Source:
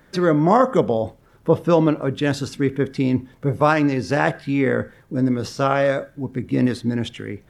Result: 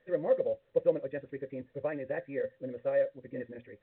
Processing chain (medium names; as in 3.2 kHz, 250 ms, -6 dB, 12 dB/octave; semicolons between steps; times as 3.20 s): hum notches 60/120/180/240 Hz; time stretch by phase-locked vocoder 0.51×; cascade formant filter e; trim -4 dB; µ-law 64 kbps 8 kHz